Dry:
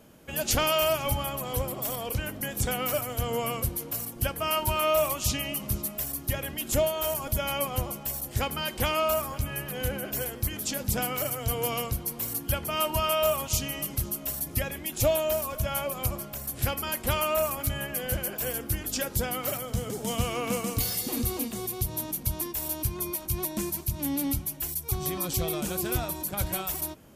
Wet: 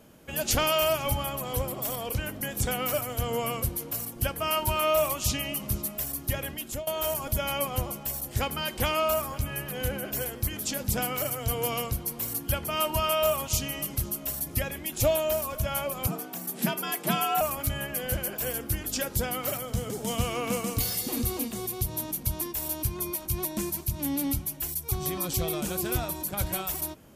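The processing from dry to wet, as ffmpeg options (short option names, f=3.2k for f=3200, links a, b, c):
-filter_complex "[0:a]asettb=1/sr,asplit=3[a][b][c];[a]atrim=end=16.074[d];[b]atrim=start=16.07:end=17.41,asetpts=PTS-STARTPTS,afade=t=in:d=0.004:c=qsin,afade=t=out:st=1.336:d=0.004:c=qsin,afreqshift=110[e];[c]atrim=start=17.406[f];[d][e]acrossfade=d=0.004:c1=hsin:c2=qsin[g];[g][f]acrossfade=d=0.004:c1=qsin:c2=hsin,asplit=2[h][i];[h]atrim=end=6.87,asetpts=PTS-STARTPTS,afade=t=out:st=6.47:d=0.4:silence=0.112202[j];[i]atrim=start=6.87,asetpts=PTS-STARTPTS,afade=t=in:d=0.004:c=hsin:silence=0.112202[k];[j][k]concat=n=2:v=0:a=1"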